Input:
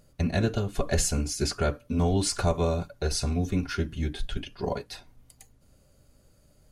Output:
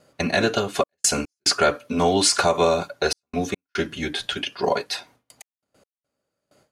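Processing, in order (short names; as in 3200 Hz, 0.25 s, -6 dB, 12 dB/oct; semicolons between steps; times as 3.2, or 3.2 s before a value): weighting filter A; gate with hold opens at -57 dBFS; step gate "xxxx.x.xxxx" 72 bpm -60 dB; maximiser +18.5 dB; mismatched tape noise reduction decoder only; gain -6 dB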